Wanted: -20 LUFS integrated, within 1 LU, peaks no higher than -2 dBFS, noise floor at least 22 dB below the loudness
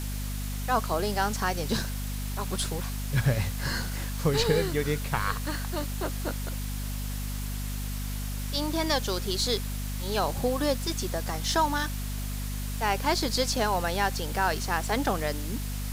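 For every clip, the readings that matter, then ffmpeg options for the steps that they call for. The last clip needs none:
hum 50 Hz; highest harmonic 250 Hz; hum level -30 dBFS; noise floor -33 dBFS; noise floor target -51 dBFS; loudness -29.0 LUFS; peak level -11.5 dBFS; loudness target -20.0 LUFS
-> -af "bandreject=f=50:t=h:w=4,bandreject=f=100:t=h:w=4,bandreject=f=150:t=h:w=4,bandreject=f=200:t=h:w=4,bandreject=f=250:t=h:w=4"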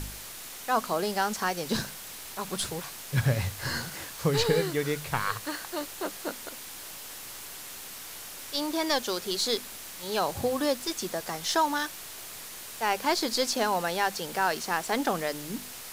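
hum not found; noise floor -42 dBFS; noise floor target -52 dBFS
-> -af "afftdn=nr=10:nf=-42"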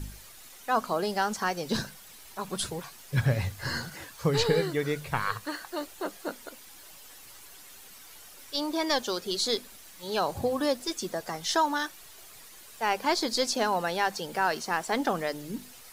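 noise floor -50 dBFS; noise floor target -52 dBFS
-> -af "afftdn=nr=6:nf=-50"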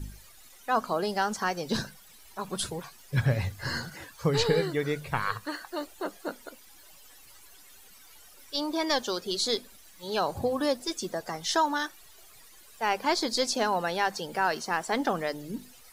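noise floor -53 dBFS; loudness -29.5 LUFS; peak level -12.0 dBFS; loudness target -20.0 LUFS
-> -af "volume=2.99"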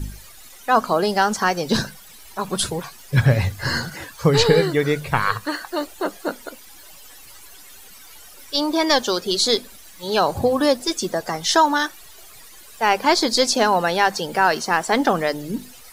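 loudness -20.0 LUFS; peak level -2.5 dBFS; noise floor -44 dBFS

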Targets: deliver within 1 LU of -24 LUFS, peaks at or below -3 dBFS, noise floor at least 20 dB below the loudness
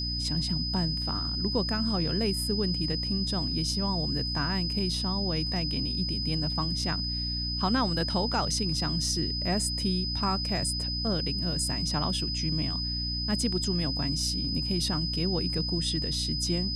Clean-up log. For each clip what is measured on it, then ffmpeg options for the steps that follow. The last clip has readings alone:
hum 60 Hz; highest harmonic 300 Hz; hum level -32 dBFS; steady tone 5 kHz; tone level -31 dBFS; loudness -28.0 LUFS; peak level -14.0 dBFS; loudness target -24.0 LUFS
-> -af "bandreject=f=60:t=h:w=4,bandreject=f=120:t=h:w=4,bandreject=f=180:t=h:w=4,bandreject=f=240:t=h:w=4,bandreject=f=300:t=h:w=4"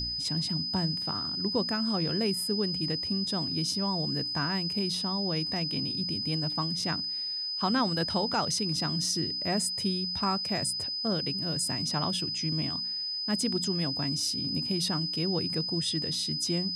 hum not found; steady tone 5 kHz; tone level -31 dBFS
-> -af "bandreject=f=5000:w=30"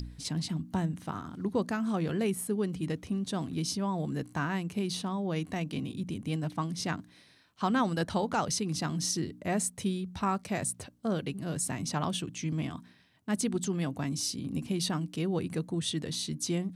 steady tone not found; loudness -32.5 LUFS; peak level -16.0 dBFS; loudness target -24.0 LUFS
-> -af "volume=2.66"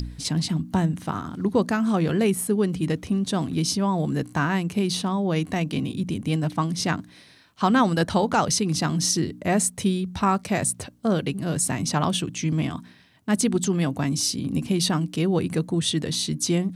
loudness -24.0 LUFS; peak level -7.5 dBFS; noise floor -50 dBFS

